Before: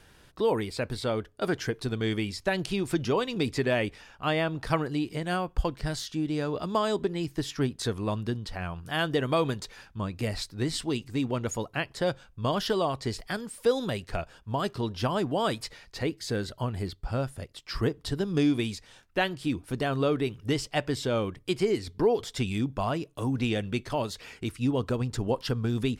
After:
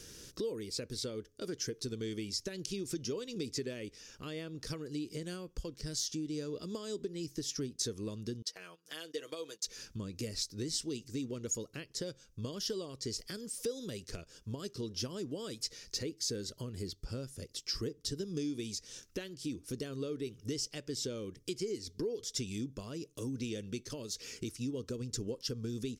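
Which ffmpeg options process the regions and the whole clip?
-filter_complex "[0:a]asettb=1/sr,asplit=3[s0][s1][s2];[s0]atrim=end=8.424[s3];[s1]atrim=start=8.42:end=9.67,asetpts=PTS-STARTPTS,afade=t=in:d=0.004:c=qsin,afade=t=out:st=1.246:d=0.004:c=qsin,highpass=550,agate=range=0.178:threshold=0.00562:ratio=16:release=100:detection=peak,aecho=1:1:6.3:0.65,atrim=end_sample=55125[s4];[s2]atrim=start=9.666[s5];[s3][s4]acrossfade=d=0.004:c1=hsin:c2=qsin[s6];[s6][s5]acrossfade=d=0.004:c1=qsin:c2=hsin,lowshelf=f=190:g=-8.5,acompressor=threshold=0.00398:ratio=3,firequalizer=gain_entry='entry(470,0);entry(730,-20);entry(1200,-12);entry(3900,-2);entry(5800,11);entry(8400,2)':delay=0.05:min_phase=1,volume=2.37"

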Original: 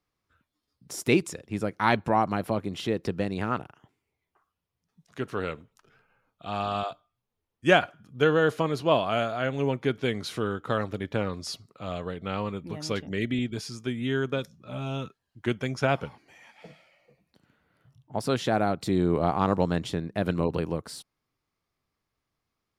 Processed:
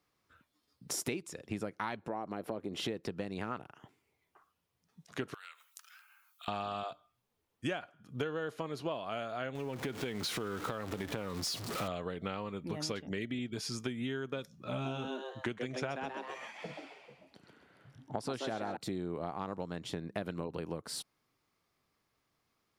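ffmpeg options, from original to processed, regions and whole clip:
-filter_complex "[0:a]asettb=1/sr,asplit=3[s0][s1][s2];[s0]atrim=end=2.024[s3];[s1]atrim=start=2.02:end=2.82,asetpts=PTS-STARTPTS,afade=t=in:d=0.004:c=qsin,afade=t=out:st=0.796:d=0.004:c=qsin,equalizer=f=410:w=0.72:g=9,acompressor=threshold=0.0158:ratio=1.5:attack=3.2:release=140:knee=1:detection=peak[s4];[s2]atrim=start=2.816[s5];[s3][s4]acrossfade=d=0.004:c1=hsin:c2=qsin[s6];[s6][s5]acrossfade=d=0.004:c1=qsin:c2=hsin,asettb=1/sr,asplit=3[s7][s8][s9];[s7]atrim=end=5.344[s10];[s8]atrim=start=5.34:end=6.48,asetpts=PTS-STARTPTS,afade=t=in:d=0.004:c=qsin,afade=t=out:st=1.136:d=0.004:c=qsin,highpass=f=1100:w=0.5412,highpass=f=1100:w=1.3066,aemphasis=mode=production:type=75fm,acompressor=threshold=0.00316:ratio=8:attack=3.2:release=140:knee=1:detection=peak[s11];[s9]atrim=start=6.476[s12];[s10][s11]acrossfade=d=0.004:c1=hsin:c2=qsin[s13];[s13][s12]acrossfade=d=0.004:c1=qsin:c2=hsin,asettb=1/sr,asplit=3[s14][s15][s16];[s14]atrim=end=9.554[s17];[s15]atrim=start=9.55:end=11.88,asetpts=PTS-STARTPTS,afade=t=in:d=0.004:c=qsin,afade=t=out:st=2.326:d=0.004:c=qsin,aeval=exprs='val(0)+0.5*0.0158*sgn(val(0))':c=same,acompressor=threshold=0.0398:ratio=4:attack=3.2:release=140:knee=1:detection=peak[s18];[s16]atrim=start=11.876[s19];[s17][s18]acrossfade=d=0.004:c1=hsin:c2=qsin[s20];[s20][s19]acrossfade=d=0.004:c1=qsin:c2=hsin,asettb=1/sr,asplit=3[s21][s22][s23];[s21]atrim=end=14.714[s24];[s22]atrim=start=14.71:end=18.77,asetpts=PTS-STARTPTS,afade=t=in:d=0.004:c=qsin,afade=t=out:st=4.056:d=0.004:c=qsin,lowpass=10000,asplit=5[s25][s26][s27][s28][s29];[s26]adelay=131,afreqshift=130,volume=0.562[s30];[s27]adelay=262,afreqshift=260,volume=0.186[s31];[s28]adelay=393,afreqshift=390,volume=0.061[s32];[s29]adelay=524,afreqshift=520,volume=0.0202[s33];[s25][s30][s31][s32][s33]amix=inputs=5:normalize=0,atrim=end_sample=179046[s34];[s23]atrim=start=18.766[s35];[s24][s34]acrossfade=d=0.004:c1=hsin:c2=qsin[s36];[s36][s35]acrossfade=d=0.004:c1=qsin:c2=hsin,lowshelf=f=86:g=-11,acompressor=threshold=0.0126:ratio=16,volume=1.68"

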